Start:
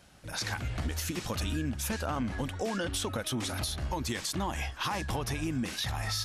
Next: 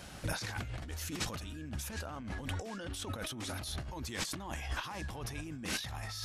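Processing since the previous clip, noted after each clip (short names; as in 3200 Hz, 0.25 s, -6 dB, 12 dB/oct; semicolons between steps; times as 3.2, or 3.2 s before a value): negative-ratio compressor -42 dBFS, ratio -1; gain +1.5 dB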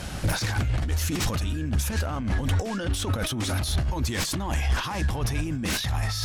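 sine folder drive 10 dB, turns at -21.5 dBFS; low shelf 150 Hz +8 dB; gain -2 dB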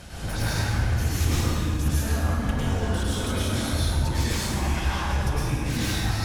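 reverb RT60 2.4 s, pre-delay 93 ms, DRR -9 dB; gain -8.5 dB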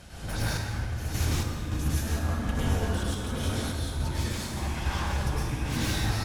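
random-step tremolo; echo 0.758 s -7.5 dB; gain -2 dB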